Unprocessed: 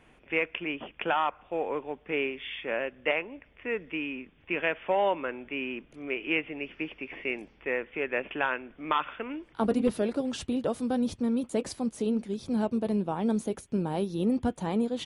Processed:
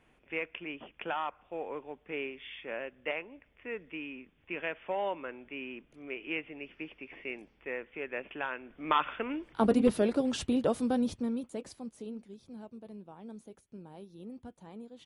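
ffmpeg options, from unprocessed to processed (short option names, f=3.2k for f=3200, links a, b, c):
-af "volume=1dB,afade=t=in:st=8.54:d=0.49:silence=0.375837,afade=t=out:st=10.73:d=0.78:silence=0.281838,afade=t=out:st=11.51:d=1.1:silence=0.354813"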